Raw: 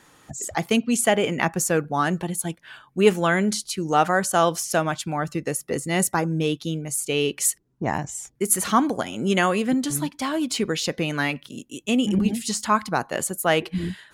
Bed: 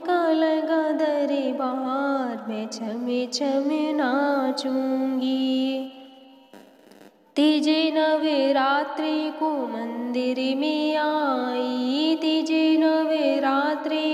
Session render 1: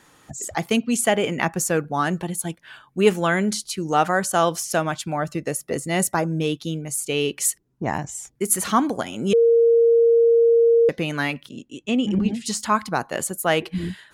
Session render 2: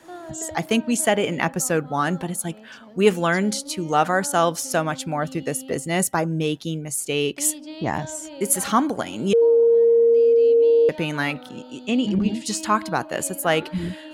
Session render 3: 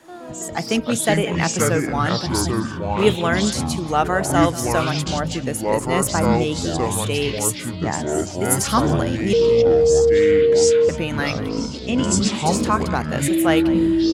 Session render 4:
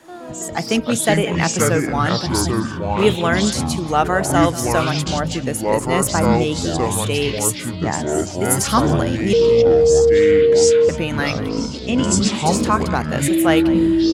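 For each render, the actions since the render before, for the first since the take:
5.11–6.39 s: peaking EQ 630 Hz +7 dB 0.21 oct; 9.33–10.89 s: bleep 464 Hz -12 dBFS; 11.49–12.46 s: distance through air 97 m
add bed -16.5 dB
delay 185 ms -16.5 dB; ever faster or slower copies 85 ms, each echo -6 st, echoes 3
trim +2 dB; peak limiter -3 dBFS, peak gain reduction 2 dB

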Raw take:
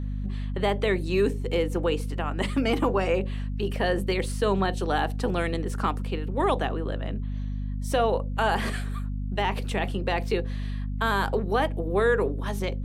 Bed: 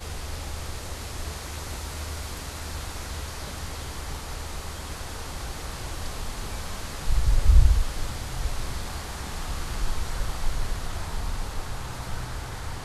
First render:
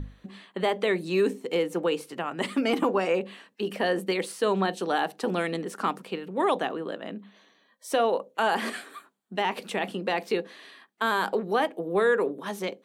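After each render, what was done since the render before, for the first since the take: hum notches 50/100/150/200/250 Hz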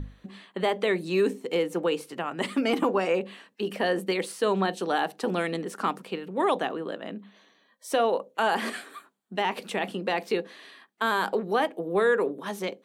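no audible change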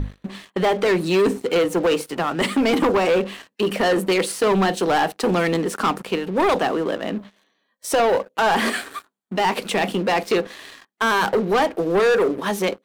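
waveshaping leveller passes 3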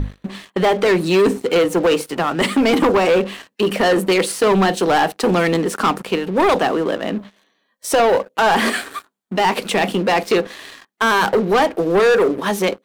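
trim +3.5 dB

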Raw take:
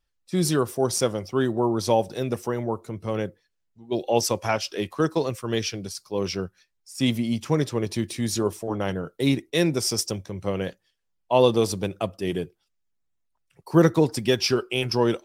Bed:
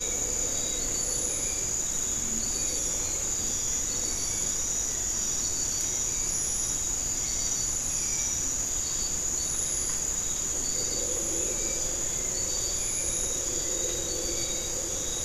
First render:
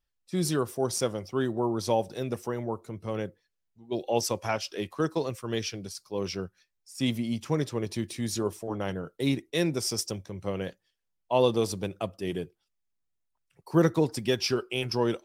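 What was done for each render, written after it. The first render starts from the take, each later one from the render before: trim -5 dB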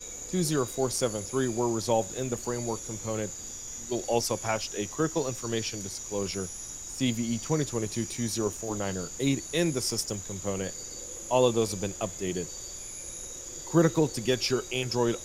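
add bed -11 dB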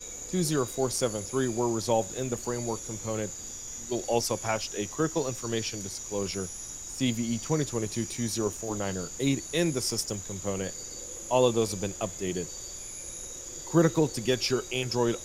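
no audible change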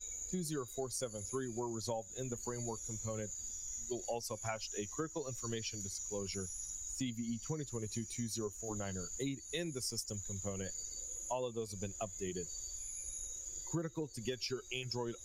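expander on every frequency bin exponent 1.5; compression 8:1, threshold -36 dBFS, peak gain reduction 18 dB

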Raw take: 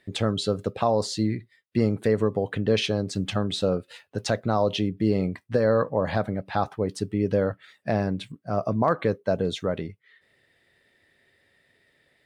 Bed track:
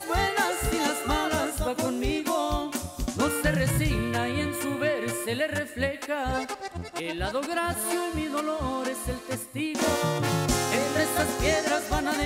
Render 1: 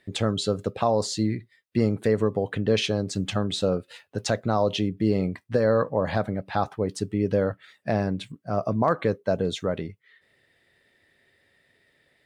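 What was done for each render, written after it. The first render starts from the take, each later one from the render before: dynamic bell 7.1 kHz, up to +4 dB, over -54 dBFS, Q 2.8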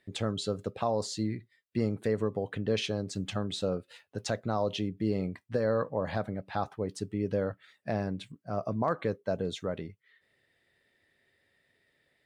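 trim -7 dB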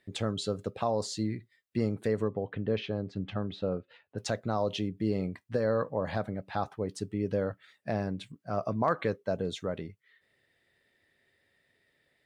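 2.28–4.18 s: distance through air 330 m; 8.40–9.24 s: peaking EQ 2.3 kHz +4.5 dB 2.8 oct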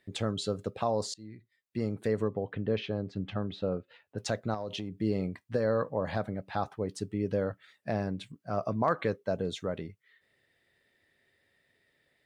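1.14–2.13 s: fade in, from -23.5 dB; 4.54–5.01 s: compression 5:1, threshold -32 dBFS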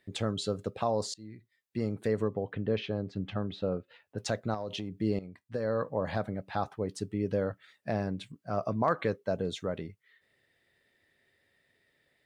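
5.19–5.96 s: fade in, from -14.5 dB

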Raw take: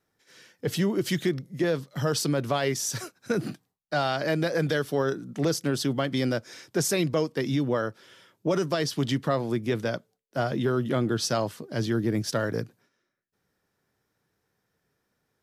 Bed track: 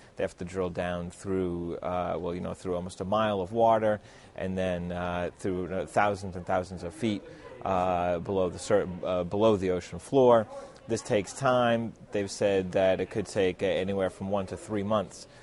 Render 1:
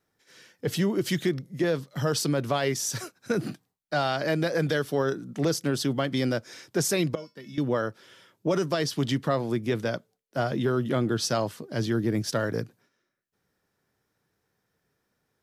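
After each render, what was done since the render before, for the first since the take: 7.15–7.58 s: feedback comb 200 Hz, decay 0.22 s, harmonics odd, mix 90%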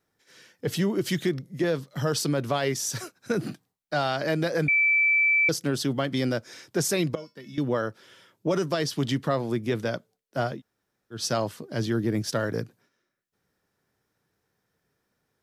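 4.68–5.49 s: bleep 2.32 kHz -18 dBFS; 10.54–11.18 s: room tone, crossfade 0.16 s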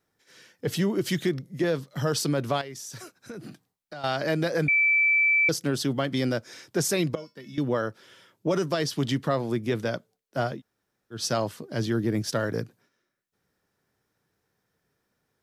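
2.61–4.04 s: compression 4:1, threshold -38 dBFS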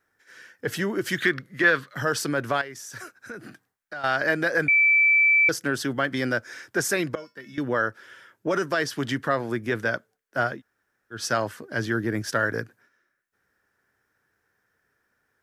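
fifteen-band graphic EQ 160 Hz -7 dB, 1.6 kHz +12 dB, 4 kHz -4 dB; 1.18–1.94 s: time-frequency box 970–4800 Hz +8 dB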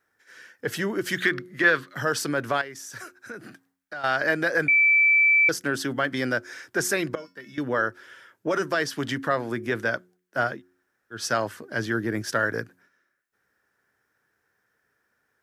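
bass shelf 82 Hz -7 dB; de-hum 90.37 Hz, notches 4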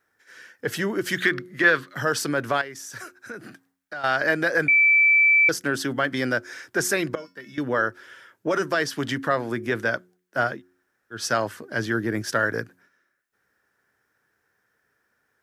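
trim +1.5 dB

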